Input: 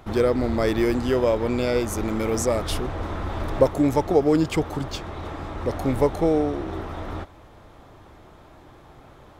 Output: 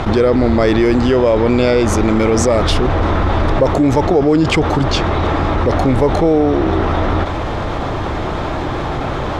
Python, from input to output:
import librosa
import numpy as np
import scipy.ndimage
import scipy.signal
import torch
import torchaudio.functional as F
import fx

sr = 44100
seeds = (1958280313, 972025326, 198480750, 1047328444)

p1 = scipy.signal.sosfilt(scipy.signal.butter(2, 5400.0, 'lowpass', fs=sr, output='sos'), x)
p2 = 10.0 ** (-15.0 / 20.0) * np.tanh(p1 / 10.0 ** (-15.0 / 20.0))
p3 = p1 + (p2 * librosa.db_to_amplitude(-11.5))
p4 = fx.env_flatten(p3, sr, amount_pct=70)
y = p4 * librosa.db_to_amplitude(1.5)